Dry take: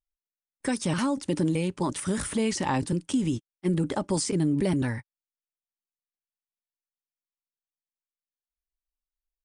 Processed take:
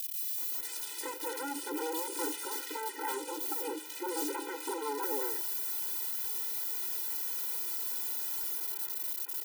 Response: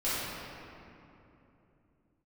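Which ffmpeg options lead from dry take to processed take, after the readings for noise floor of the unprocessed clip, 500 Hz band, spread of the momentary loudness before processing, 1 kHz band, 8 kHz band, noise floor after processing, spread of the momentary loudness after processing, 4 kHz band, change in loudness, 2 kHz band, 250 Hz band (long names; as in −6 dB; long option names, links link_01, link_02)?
below −85 dBFS, −7.0 dB, 5 LU, −2.5 dB, −0.5 dB, −42 dBFS, 5 LU, −2.5 dB, −5.5 dB, −4.5 dB, −16.0 dB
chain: -filter_complex "[0:a]aeval=exprs='val(0)+0.5*0.0251*sgn(val(0))':channel_layout=same,equalizer=frequency=6900:width_type=o:width=1.2:gain=-10,bandreject=frequency=103.3:width_type=h:width=4,bandreject=frequency=206.6:width_type=h:width=4,bandreject=frequency=309.9:width_type=h:width=4,bandreject=frequency=413.2:width_type=h:width=4,bandreject=frequency=516.5:width_type=h:width=4,bandreject=frequency=619.8:width_type=h:width=4,bandreject=frequency=723.1:width_type=h:width=4,bandreject=frequency=826.4:width_type=h:width=4,bandreject=frequency=929.7:width_type=h:width=4,bandreject=frequency=1033:width_type=h:width=4,bandreject=frequency=1136.3:width_type=h:width=4,bandreject=frequency=1239.6:width_type=h:width=4,bandreject=frequency=1342.9:width_type=h:width=4,bandreject=frequency=1446.2:width_type=h:width=4,bandreject=frequency=1549.5:width_type=h:width=4,bandreject=frequency=1652.8:width_type=h:width=4,bandreject=frequency=1756.1:width_type=h:width=4,bandreject=frequency=1859.4:width_type=h:width=4,bandreject=frequency=1962.7:width_type=h:width=4,bandreject=frequency=2066:width_type=h:width=4,bandreject=frequency=2169.3:width_type=h:width=4,bandreject=frequency=2272.6:width_type=h:width=4,bandreject=frequency=2375.9:width_type=h:width=4,bandreject=frequency=2479.2:width_type=h:width=4,bandreject=frequency=2582.5:width_type=h:width=4,bandreject=frequency=2685.8:width_type=h:width=4,bandreject=frequency=2789.1:width_type=h:width=4,bandreject=frequency=2892.4:width_type=h:width=4,bandreject=frequency=2995.7:width_type=h:width=4,bandreject=frequency=3099:width_type=h:width=4,bandreject=frequency=3202.3:width_type=h:width=4,bandreject=frequency=3305.6:width_type=h:width=4,bandreject=frequency=3408.9:width_type=h:width=4,acrossover=split=100|1100|4200[link_01][link_02][link_03][link_04];[link_03]acompressor=threshold=-49dB:ratio=6[link_05];[link_01][link_02][link_05][link_04]amix=inputs=4:normalize=0,crystalizer=i=3.5:c=0,aeval=exprs='0.0473*(abs(mod(val(0)/0.0473+3,4)-2)-1)':channel_layout=same,acrossover=split=2400[link_06][link_07];[link_06]adelay=380[link_08];[link_08][link_07]amix=inputs=2:normalize=0,afftfilt=real='re*eq(mod(floor(b*sr/1024/260),2),1)':imag='im*eq(mod(floor(b*sr/1024/260),2),1)':win_size=1024:overlap=0.75"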